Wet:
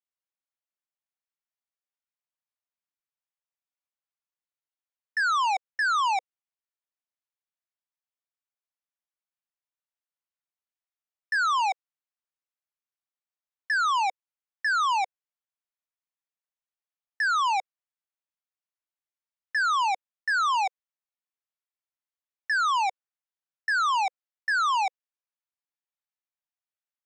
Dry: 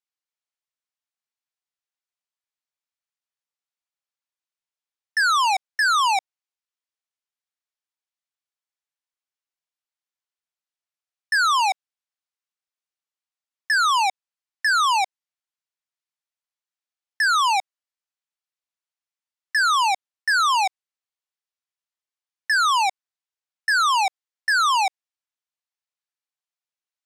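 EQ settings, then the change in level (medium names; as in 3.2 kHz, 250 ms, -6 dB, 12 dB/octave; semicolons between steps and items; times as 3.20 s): brick-wall FIR band-pass 510–12000 Hz; distance through air 170 m; resonant high shelf 5.8 kHz +6.5 dB, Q 1.5; -3.5 dB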